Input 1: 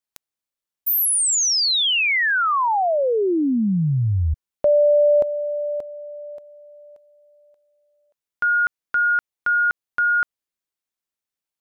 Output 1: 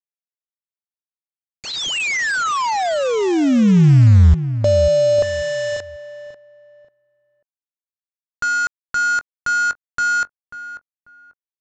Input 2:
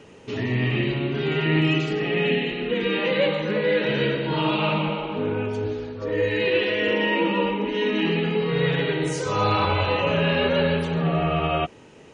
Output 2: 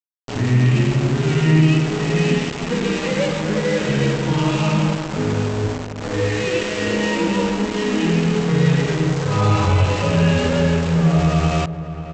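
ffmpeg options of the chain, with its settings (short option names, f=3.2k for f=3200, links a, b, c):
-filter_complex "[0:a]bass=f=250:g=11,treble=f=4k:g=-10,aresample=16000,aeval=exprs='val(0)*gte(abs(val(0)),0.075)':c=same,aresample=44100,asplit=2[a][b];[b]adelay=541,lowpass=f=1.5k:p=1,volume=-11.5dB,asplit=2[c][d];[d]adelay=541,lowpass=f=1.5k:p=1,volume=0.26,asplit=2[e][f];[f]adelay=541,lowpass=f=1.5k:p=1,volume=0.26[g];[a][c][e][g]amix=inputs=4:normalize=0"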